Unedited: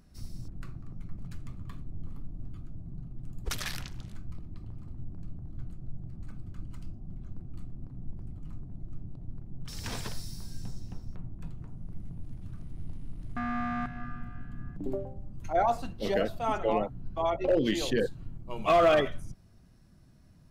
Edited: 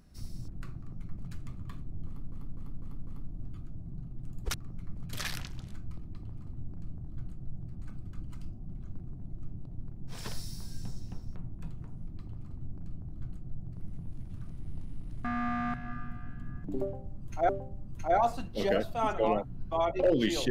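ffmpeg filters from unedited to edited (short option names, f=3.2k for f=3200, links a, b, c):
-filter_complex "[0:a]asplit=12[a][b][c][d][e][f][g][h][i][j][k][l];[a]atrim=end=2.322[m];[b]atrim=start=2.068:end=2.322[n];[c]atrim=start=2.068:end=2.322[o];[d]atrim=start=2.068:end=2.322[p];[e]atrim=start=2.068:end=3.542[q];[f]atrim=start=0.758:end=1.352[r];[g]atrim=start=3.538:end=7.482[s];[h]atrim=start=8.568:end=9.81[t];[i]atrim=start=9.87:end=11.872[u];[j]atrim=start=4.438:end=6.122[v];[k]atrim=start=11.868:end=15.612[w];[l]atrim=start=14.938[x];[m][n]acrossfade=d=0.004:c1=hsin:c2=hsin[y];[y][o]acrossfade=d=0.004:c1=hsin:c2=hsin[z];[z][p]acrossfade=d=0.004:c1=hsin:c2=hsin[aa];[aa][q]acrossfade=d=0.004:c1=hsin:c2=hsin[ab];[ab][r]acrossfade=d=0.004:c1=hsin:c2=hsin[ac];[ac][s]acrossfade=d=0.004:c1=hsin:c2=hsin[ad];[ad][t]acrossfade=d=0.004:c1=hsin:c2=hsin[ae];[ae][u]acrossfade=d=0.24:c1=tri:c2=tri[af];[af][v]acrossfade=d=0.004:c1=hsin:c2=hsin[ag];[ag][w]acrossfade=d=0.004:c1=hsin:c2=hsin[ah];[ah][x]acrossfade=d=0.004:c1=hsin:c2=hsin"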